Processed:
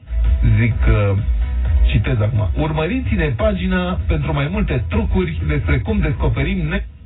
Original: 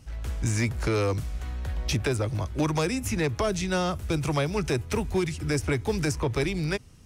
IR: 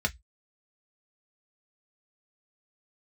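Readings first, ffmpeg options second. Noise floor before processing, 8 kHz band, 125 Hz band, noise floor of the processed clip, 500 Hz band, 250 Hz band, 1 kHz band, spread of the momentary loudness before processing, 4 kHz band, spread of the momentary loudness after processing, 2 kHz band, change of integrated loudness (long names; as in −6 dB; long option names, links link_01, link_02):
−41 dBFS, below −40 dB, +12.0 dB, −29 dBFS, +5.5 dB, +8.0 dB, +5.5 dB, 5 LU, +3.0 dB, 4 LU, +8.0 dB, +9.5 dB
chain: -filter_complex "[1:a]atrim=start_sample=2205[link_01];[0:a][link_01]afir=irnorm=-1:irlink=0,volume=-1dB" -ar 16000 -c:a aac -b:a 16k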